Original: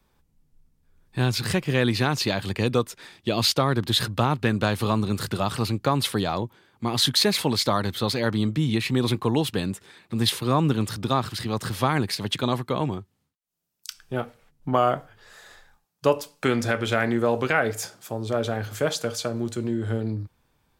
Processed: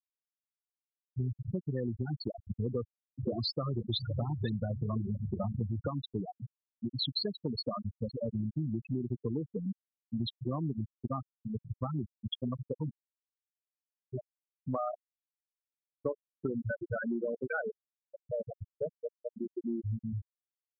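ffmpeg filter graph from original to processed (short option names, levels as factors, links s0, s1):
-filter_complex "[0:a]asettb=1/sr,asplit=3[s0][s1][s2];[s0]atrim=end=2.664[s3];[s1]atrim=start=2.66:end=5.9,asetpts=PTS-STARTPTS,afade=t=in:d=0.004:c=qsin,afade=t=out:st=3.236:d=0.004:c=qsin,aeval=exprs='val(0)+0.5*0.0631*sgn(val(0))':c=same,aecho=1:1:516:0.422,atrim=end_sample=142884[s4];[s2]atrim=start=5.896[s5];[s3][s4]acrossfade=d=0.004:c1=hsin:c2=qsin[s6];[s6][s5]acrossfade=d=0.004:c1=qsin:c2=hsin,afftfilt=real='re*gte(hypot(re,im),0.355)':imag='im*gte(hypot(re,im),0.355)':win_size=1024:overlap=0.75,equalizer=f=910:t=o:w=0.56:g=-7,acompressor=threshold=0.0447:ratio=6,volume=0.668"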